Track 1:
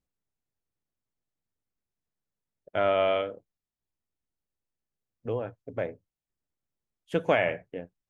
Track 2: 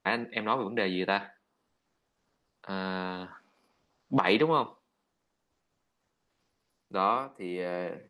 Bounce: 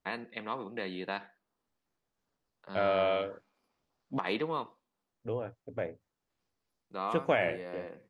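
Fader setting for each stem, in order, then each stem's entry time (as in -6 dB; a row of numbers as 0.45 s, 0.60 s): -4.0 dB, -8.5 dB; 0.00 s, 0.00 s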